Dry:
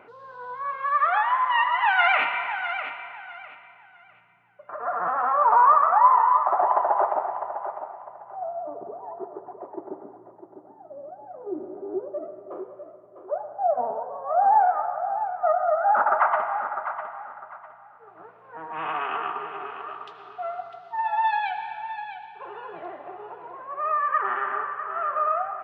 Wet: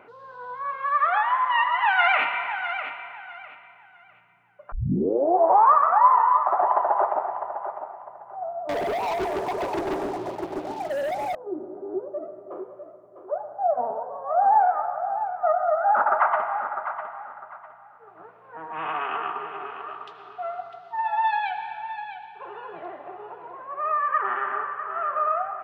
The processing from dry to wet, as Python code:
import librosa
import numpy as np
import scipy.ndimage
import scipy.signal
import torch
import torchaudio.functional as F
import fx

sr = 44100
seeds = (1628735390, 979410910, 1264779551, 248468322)

y = fx.leveller(x, sr, passes=5, at=(8.69, 11.35))
y = fx.edit(y, sr, fx.tape_start(start_s=4.72, length_s=1.0), tone=tone)